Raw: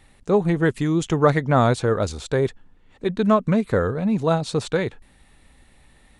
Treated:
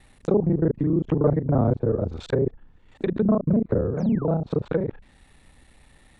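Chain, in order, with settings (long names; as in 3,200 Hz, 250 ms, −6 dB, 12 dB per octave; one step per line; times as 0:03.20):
reversed piece by piece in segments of 31 ms
sound drawn into the spectrogram fall, 0:03.98–0:04.27, 800–7,100 Hz −28 dBFS
treble cut that deepens with the level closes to 500 Hz, closed at −18 dBFS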